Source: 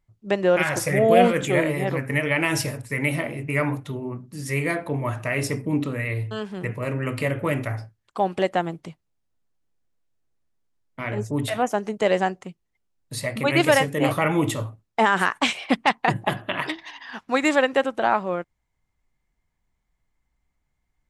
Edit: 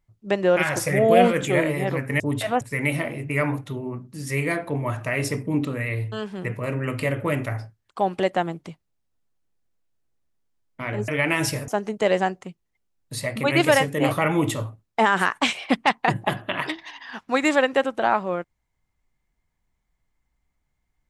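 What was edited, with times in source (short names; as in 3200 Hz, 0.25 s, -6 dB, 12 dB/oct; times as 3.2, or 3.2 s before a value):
2.2–2.8 swap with 11.27–11.68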